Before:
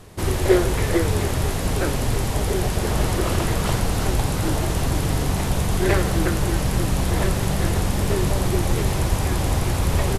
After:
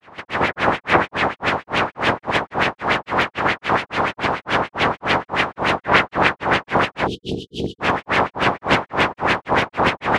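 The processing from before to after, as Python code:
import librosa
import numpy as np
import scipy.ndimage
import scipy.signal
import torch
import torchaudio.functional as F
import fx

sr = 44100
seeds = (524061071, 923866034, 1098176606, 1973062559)

y = fx.spec_clip(x, sr, under_db=24)
y = scipy.signal.sosfilt(scipy.signal.butter(2, 85.0, 'highpass', fs=sr, output='sos'), y)
y = fx.spec_erase(y, sr, start_s=7.06, length_s=0.75, low_hz=490.0, high_hz=2900.0)
y = fx.granulator(y, sr, seeds[0], grain_ms=254.0, per_s=3.6, spray_ms=12.0, spread_st=0)
y = fx.filter_lfo_lowpass(y, sr, shape='sine', hz=6.9, low_hz=890.0, high_hz=2700.0, q=2.1)
y = fx.doppler_dist(y, sr, depth_ms=0.43)
y = y * librosa.db_to_amplitude(4.5)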